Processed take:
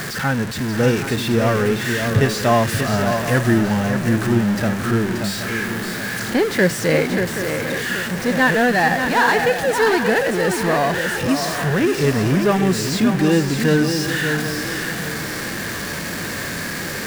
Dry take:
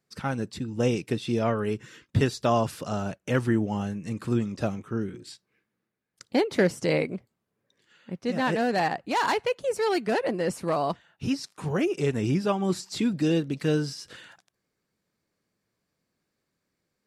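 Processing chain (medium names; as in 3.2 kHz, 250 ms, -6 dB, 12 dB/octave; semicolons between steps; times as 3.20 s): jump at every zero crossing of -26.5 dBFS; peaking EQ 1.7 kHz +9.5 dB 0.47 oct; shuffle delay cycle 775 ms, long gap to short 3:1, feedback 35%, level -7 dB; harmonic-percussive split harmonic +6 dB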